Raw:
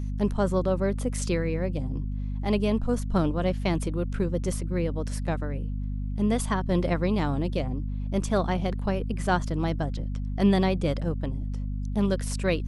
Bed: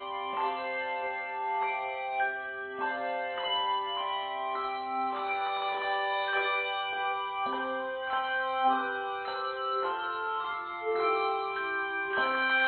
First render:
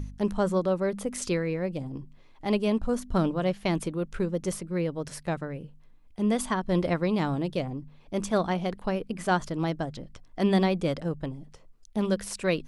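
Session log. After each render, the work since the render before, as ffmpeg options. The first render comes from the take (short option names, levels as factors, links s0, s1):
-af "bandreject=f=50:t=h:w=4,bandreject=f=100:t=h:w=4,bandreject=f=150:t=h:w=4,bandreject=f=200:t=h:w=4,bandreject=f=250:t=h:w=4"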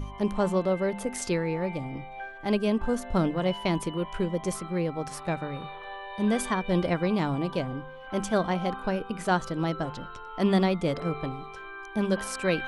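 -filter_complex "[1:a]volume=0.335[s0];[0:a][s0]amix=inputs=2:normalize=0"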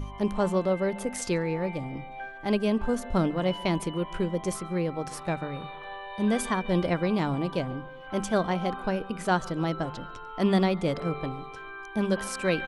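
-filter_complex "[0:a]asplit=2[s0][s1];[s1]adelay=141,lowpass=f=2200:p=1,volume=0.0794,asplit=2[s2][s3];[s3]adelay=141,lowpass=f=2200:p=1,volume=0.51,asplit=2[s4][s5];[s5]adelay=141,lowpass=f=2200:p=1,volume=0.51,asplit=2[s6][s7];[s7]adelay=141,lowpass=f=2200:p=1,volume=0.51[s8];[s0][s2][s4][s6][s8]amix=inputs=5:normalize=0"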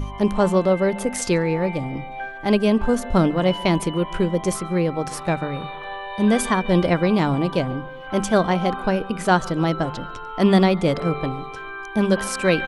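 -af "volume=2.37"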